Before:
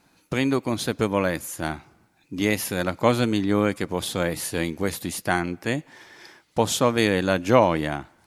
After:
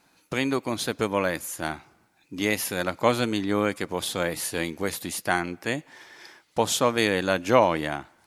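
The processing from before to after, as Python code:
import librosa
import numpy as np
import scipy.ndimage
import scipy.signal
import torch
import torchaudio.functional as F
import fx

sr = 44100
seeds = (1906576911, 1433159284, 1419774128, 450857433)

y = fx.low_shelf(x, sr, hz=290.0, db=-7.5)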